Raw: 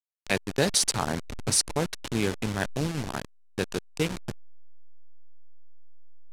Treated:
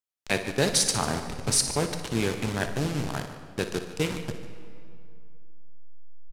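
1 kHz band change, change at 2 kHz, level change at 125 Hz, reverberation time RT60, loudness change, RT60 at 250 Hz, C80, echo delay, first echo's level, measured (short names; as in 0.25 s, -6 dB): +1.0 dB, +1.0 dB, +1.5 dB, 2.4 s, +0.5 dB, 2.6 s, 9.0 dB, 59 ms, -12.0 dB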